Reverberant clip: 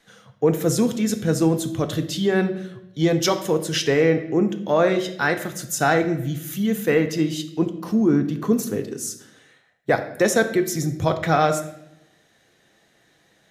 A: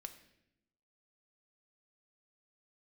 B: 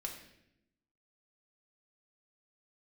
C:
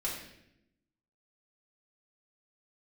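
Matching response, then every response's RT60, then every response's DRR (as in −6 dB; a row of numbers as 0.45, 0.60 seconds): A; 0.80, 0.80, 0.80 seconds; 7.0, 0.5, −6.0 decibels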